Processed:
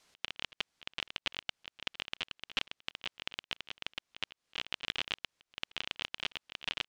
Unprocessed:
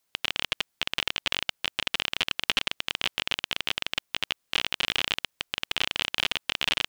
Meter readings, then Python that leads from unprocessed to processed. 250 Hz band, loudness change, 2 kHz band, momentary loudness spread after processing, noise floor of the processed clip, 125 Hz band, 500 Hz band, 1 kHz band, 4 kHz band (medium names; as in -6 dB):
-11.0 dB, -11.5 dB, -11.0 dB, 6 LU, under -85 dBFS, -11.0 dB, -11.0 dB, -11.0 dB, -11.5 dB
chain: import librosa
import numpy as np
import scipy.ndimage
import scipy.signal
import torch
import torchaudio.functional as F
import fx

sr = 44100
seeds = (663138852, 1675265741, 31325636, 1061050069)

y = scipy.signal.sosfilt(scipy.signal.butter(2, 6400.0, 'lowpass', fs=sr, output='sos'), x)
y = fx.auto_swell(y, sr, attack_ms=793.0)
y = y * 10.0 ** (12.0 / 20.0)